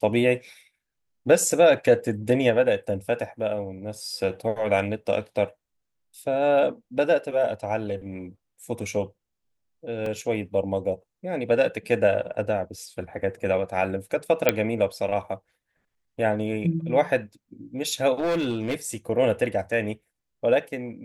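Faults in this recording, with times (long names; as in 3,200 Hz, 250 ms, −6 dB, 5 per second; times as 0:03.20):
0:10.06: drop-out 2.7 ms
0:14.49: click −3 dBFS
0:18.19–0:18.75: clipping −21 dBFS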